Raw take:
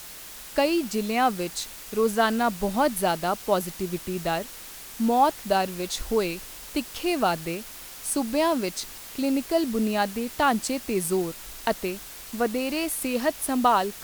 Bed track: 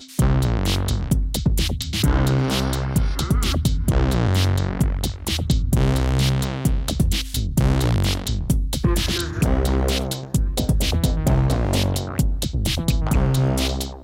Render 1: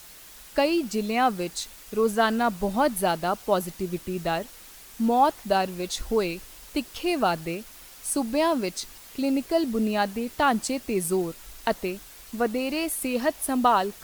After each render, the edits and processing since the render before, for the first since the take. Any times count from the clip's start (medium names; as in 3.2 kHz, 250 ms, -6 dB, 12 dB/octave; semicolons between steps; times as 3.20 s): noise reduction 6 dB, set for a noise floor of -42 dBFS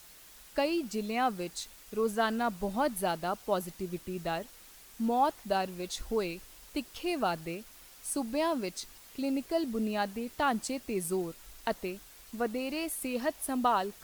trim -7 dB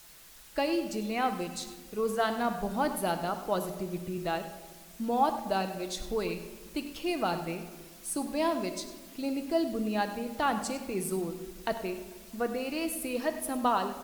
echo from a far wall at 17 m, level -14 dB; simulated room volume 1200 m³, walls mixed, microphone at 0.71 m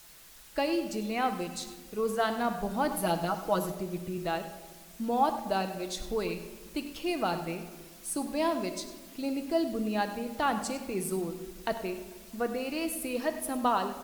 2.91–3.72 s: comb 6.2 ms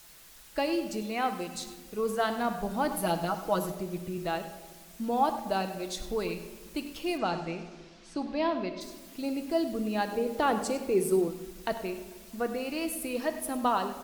1.02–1.55 s: bass shelf 130 Hz -8 dB; 7.17–8.80 s: low-pass 7.5 kHz -> 3.9 kHz 24 dB/octave; 10.12–11.28 s: peaking EQ 430 Hz +11.5 dB 0.68 oct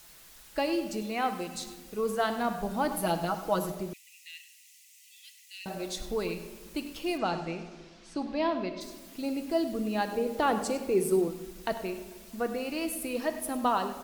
3.93–5.66 s: rippled Chebyshev high-pass 1.9 kHz, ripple 6 dB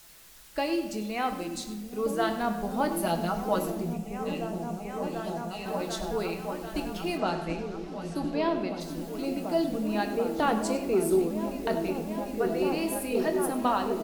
doubling 24 ms -11 dB; delay with an opening low-pass 741 ms, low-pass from 200 Hz, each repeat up 1 oct, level 0 dB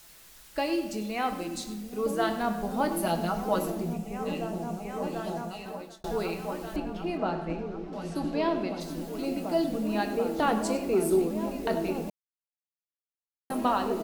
5.39–6.04 s: fade out; 6.76–7.93 s: low-pass 1.5 kHz 6 dB/octave; 12.10–13.50 s: mute